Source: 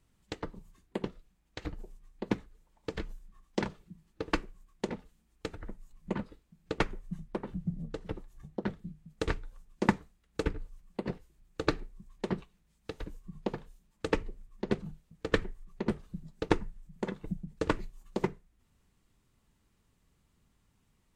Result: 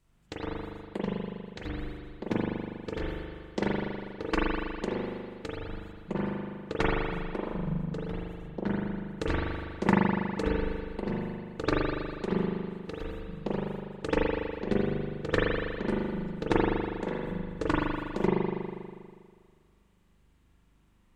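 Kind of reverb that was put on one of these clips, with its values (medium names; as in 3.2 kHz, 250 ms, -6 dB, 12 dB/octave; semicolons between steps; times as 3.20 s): spring tank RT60 1.9 s, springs 40 ms, chirp 70 ms, DRR -6 dB; trim -1.5 dB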